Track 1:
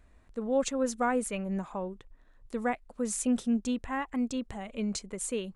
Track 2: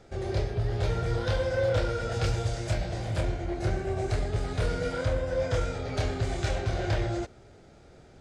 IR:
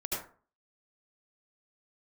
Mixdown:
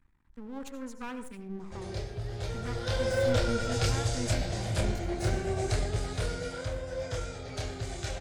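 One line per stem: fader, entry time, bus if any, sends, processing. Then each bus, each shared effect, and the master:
-3.0 dB, 0.00 s, send -11.5 dB, Chebyshev band-stop 290–820 Hz, order 4; high shelf 2500 Hz -10 dB; half-wave rectifier
2.67 s -8 dB -> 3.07 s -1 dB -> 5.83 s -1 dB -> 6.6 s -7.5 dB, 1.60 s, no send, high shelf 4300 Hz +11 dB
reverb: on, RT60 0.40 s, pre-delay 67 ms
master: dry

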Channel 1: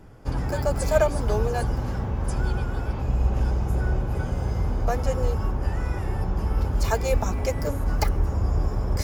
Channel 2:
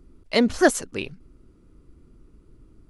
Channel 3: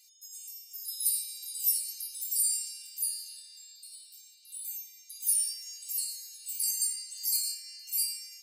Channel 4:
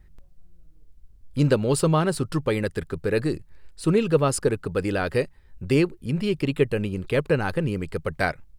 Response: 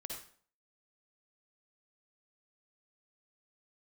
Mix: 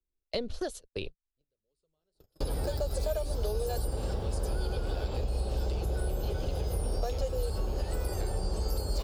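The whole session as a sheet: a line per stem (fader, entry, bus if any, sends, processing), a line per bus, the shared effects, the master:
+1.0 dB, 2.15 s, bus B, no send, dry
-5.5 dB, 0.00 s, bus B, no send, dry
-13.5 dB, 1.45 s, bus A, no send, dry
-10.5 dB, 0.00 s, bus A, no send, flange 1.7 Hz, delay 1.7 ms, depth 9.1 ms, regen -56%
bus A: 0.0 dB, compressor 10:1, threshold -44 dBFS, peak gain reduction 16 dB
bus B: 0.0 dB, bell 6400 Hz -8 dB 1.6 oct; compressor 3:1, threshold -28 dBFS, peak gain reduction 11.5 dB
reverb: off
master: gate -38 dBFS, range -52 dB; graphic EQ 125/250/500/1000/2000/4000 Hz -9/-8/+5/-8/-10/+11 dB; three-band squash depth 70%

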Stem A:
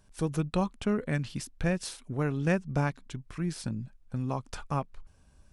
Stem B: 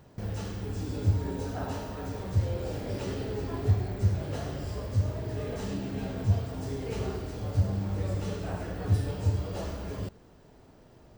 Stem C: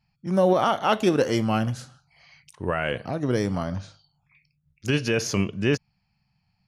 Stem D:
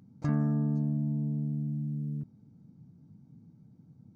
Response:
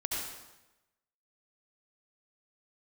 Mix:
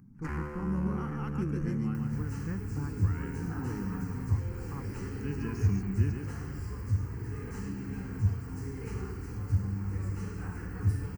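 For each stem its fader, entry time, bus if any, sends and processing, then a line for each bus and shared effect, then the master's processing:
-7.5 dB, 0.00 s, no send, no echo send, Bessel low-pass 930 Hz, order 2
-2.0 dB, 1.95 s, no send, no echo send, upward compressor, threshold -30 dBFS
-19.5 dB, 0.35 s, no send, echo send -4 dB, bell 200 Hz +13 dB 1.6 oct
+2.5 dB, 0.00 s, no send, no echo send, wavefolder -31.5 dBFS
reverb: off
echo: echo 0.14 s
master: fixed phaser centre 1500 Hz, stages 4

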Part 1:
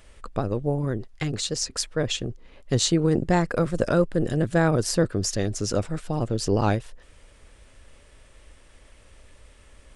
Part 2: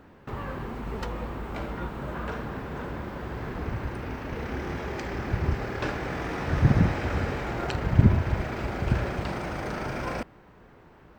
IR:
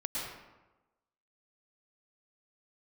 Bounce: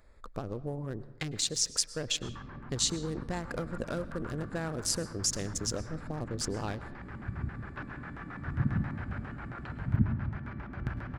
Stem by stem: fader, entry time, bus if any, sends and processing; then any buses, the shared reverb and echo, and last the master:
-9.0 dB, 0.00 s, send -18 dB, Wiener smoothing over 15 samples; compressor 6:1, threshold -24 dBFS, peak gain reduction 9 dB
-4.5 dB, 1.95 s, send -10 dB, graphic EQ 125/500/2000 Hz +4/-9/-6 dB; LFO low-pass square 7.4 Hz 260–1600 Hz; resonator 580 Hz, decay 0.43 s, mix 70%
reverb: on, RT60 1.1 s, pre-delay 0.1 s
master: high shelf 2100 Hz +11 dB

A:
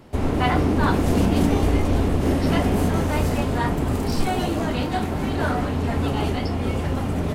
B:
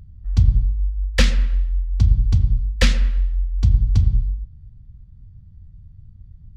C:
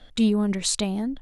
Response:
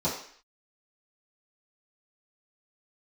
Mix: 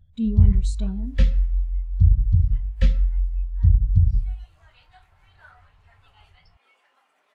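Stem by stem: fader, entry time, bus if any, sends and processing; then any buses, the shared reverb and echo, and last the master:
4.01 s -13.5 dB -> 4.69 s -5 dB, 0.00 s, no send, HPF 1300 Hz 12 dB/oct
-4.0 dB, 0.00 s, send -17 dB, dry
-3.0 dB, 0.00 s, send -20 dB, dry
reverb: on, RT60 0.55 s, pre-delay 3 ms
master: spectral expander 1.5:1

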